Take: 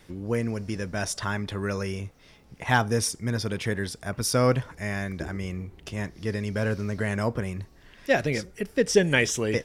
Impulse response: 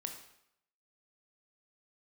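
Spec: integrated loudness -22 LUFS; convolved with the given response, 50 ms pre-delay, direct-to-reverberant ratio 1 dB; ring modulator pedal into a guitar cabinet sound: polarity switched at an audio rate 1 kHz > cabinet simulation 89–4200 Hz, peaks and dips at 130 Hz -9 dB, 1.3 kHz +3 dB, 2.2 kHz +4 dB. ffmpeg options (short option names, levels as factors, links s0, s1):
-filter_complex "[0:a]asplit=2[s0][s1];[1:a]atrim=start_sample=2205,adelay=50[s2];[s1][s2]afir=irnorm=-1:irlink=0,volume=1.06[s3];[s0][s3]amix=inputs=2:normalize=0,aeval=exprs='val(0)*sgn(sin(2*PI*1000*n/s))':c=same,highpass=89,equalizer=f=130:t=q:w=4:g=-9,equalizer=f=1300:t=q:w=4:g=3,equalizer=f=2200:t=q:w=4:g=4,lowpass=f=4200:w=0.5412,lowpass=f=4200:w=1.3066,volume=1.19"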